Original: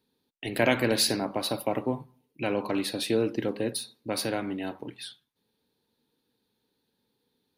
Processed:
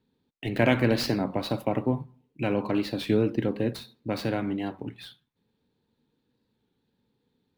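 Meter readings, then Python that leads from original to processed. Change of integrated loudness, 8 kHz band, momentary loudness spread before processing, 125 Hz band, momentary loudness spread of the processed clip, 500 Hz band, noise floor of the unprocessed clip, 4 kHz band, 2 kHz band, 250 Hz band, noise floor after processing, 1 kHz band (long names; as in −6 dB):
+1.0 dB, −12.5 dB, 14 LU, +7.5 dB, 15 LU, +0.5 dB, −78 dBFS, −5.0 dB, −0.5 dB, +3.5 dB, −77 dBFS, 0.0 dB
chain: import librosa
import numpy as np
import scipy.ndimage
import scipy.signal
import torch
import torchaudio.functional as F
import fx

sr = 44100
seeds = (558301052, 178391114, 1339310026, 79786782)

y = scipy.ndimage.median_filter(x, 5, mode='constant')
y = fx.bass_treble(y, sr, bass_db=8, treble_db=-5)
y = fx.record_warp(y, sr, rpm=33.33, depth_cents=100.0)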